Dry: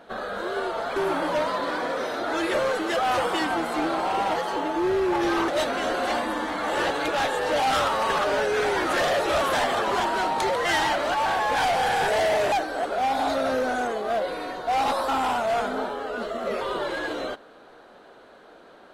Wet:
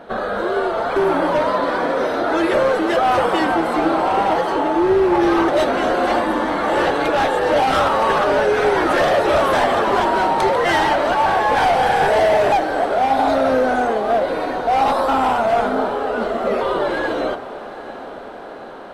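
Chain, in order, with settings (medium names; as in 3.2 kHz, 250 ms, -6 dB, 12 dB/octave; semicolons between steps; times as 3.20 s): treble shelf 2.1 kHz -10 dB; band-stop 6.9 kHz, Q 16; de-hum 60.89 Hz, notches 31; in parallel at -3 dB: compression, threshold -31 dBFS, peak gain reduction 9.5 dB; on the sum: echo that smears into a reverb 813 ms, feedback 69%, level -15.5 dB; trim +7 dB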